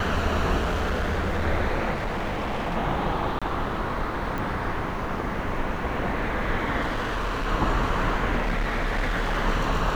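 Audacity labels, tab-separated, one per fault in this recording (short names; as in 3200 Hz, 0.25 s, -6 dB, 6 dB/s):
0.570000	1.450000	clipped -21.5 dBFS
1.930000	2.770000	clipped -24.5 dBFS
3.390000	3.420000	gap 26 ms
4.380000	4.380000	pop
6.810000	7.470000	clipped -23.5 dBFS
8.420000	9.380000	clipped -21.5 dBFS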